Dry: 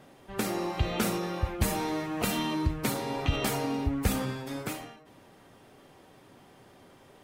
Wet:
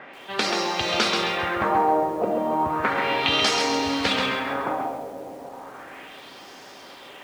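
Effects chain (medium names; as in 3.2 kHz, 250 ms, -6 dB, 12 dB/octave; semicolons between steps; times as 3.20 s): frequency weighting A; in parallel at +1 dB: compression, threshold -41 dBFS, peak gain reduction 13 dB; on the sum: echo that smears into a reverb 486 ms, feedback 53%, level -11.5 dB; LFO low-pass sine 0.34 Hz 580–5800 Hz; bit-crushed delay 133 ms, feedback 35%, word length 9-bit, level -5 dB; trim +5.5 dB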